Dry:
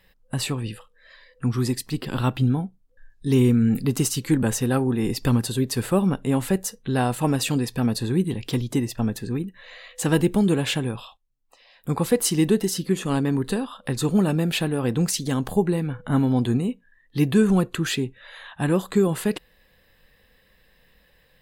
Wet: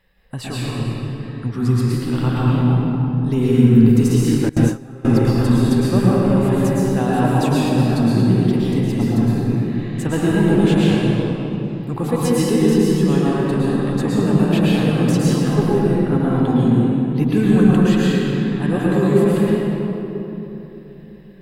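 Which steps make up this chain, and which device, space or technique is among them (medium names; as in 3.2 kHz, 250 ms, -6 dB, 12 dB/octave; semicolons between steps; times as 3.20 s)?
swimming-pool hall (reverberation RT60 3.4 s, pre-delay 105 ms, DRR -7.5 dB; treble shelf 3.4 kHz -8 dB); 4.49–5.05 s: gate with hold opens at -2 dBFS; trim -2 dB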